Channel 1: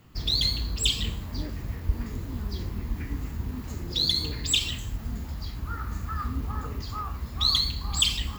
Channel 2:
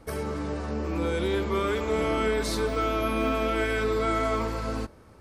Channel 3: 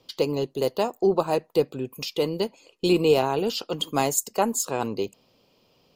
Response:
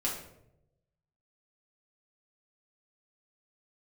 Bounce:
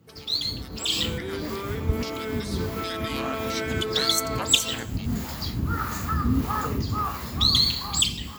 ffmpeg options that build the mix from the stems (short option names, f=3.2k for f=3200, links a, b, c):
-filter_complex "[0:a]acrossover=split=470[a][b];[a]aeval=exprs='val(0)*(1-0.7/2+0.7/2*cos(2*PI*1.6*n/s))':c=same[c];[b]aeval=exprs='val(0)*(1-0.7/2-0.7/2*cos(2*PI*1.6*n/s))':c=same[d];[c][d]amix=inputs=2:normalize=0,equalizer=f=1.4k:w=0.36:g=-3.5,volume=3dB[e];[1:a]bandreject=f=580:w=12,volume=-15.5dB[f];[2:a]highpass=f=1k:w=0.5412,highpass=f=1k:w=1.3066,aeval=exprs='val(0)*sin(2*PI*560*n/s+560*0.6/1.7*sin(2*PI*1.7*n/s))':c=same,volume=-11.5dB,asplit=2[g][h];[h]apad=whole_len=369782[i];[e][i]sidechaincompress=threshold=-53dB:ratio=8:attack=6.9:release=134[j];[j][f][g]amix=inputs=3:normalize=0,dynaudnorm=f=270:g=7:m=13dB,highpass=120"